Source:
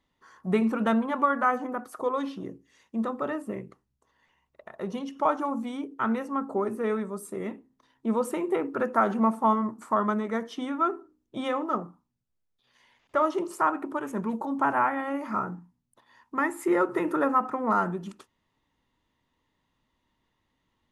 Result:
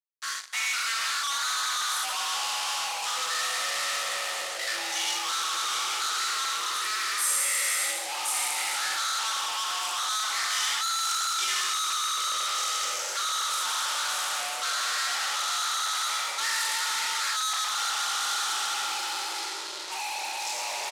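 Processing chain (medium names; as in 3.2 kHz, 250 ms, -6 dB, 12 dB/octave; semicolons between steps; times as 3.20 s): spectral sustain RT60 2.42 s; reverse; compression 12:1, threshold -35 dBFS, peak gain reduction 20.5 dB; reverse; steep high-pass 1.1 kHz 72 dB/octave; ever faster or slower copies 190 ms, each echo -7 st, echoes 3, each echo -6 dB; on a send: early reflections 18 ms -5.5 dB, 39 ms -7.5 dB; on the sum: fuzz box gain 57 dB, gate -60 dBFS; low-pass 7.1 kHz 12 dB/octave; differentiator; Schroeder reverb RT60 3.4 s, DRR 16 dB; trim -3 dB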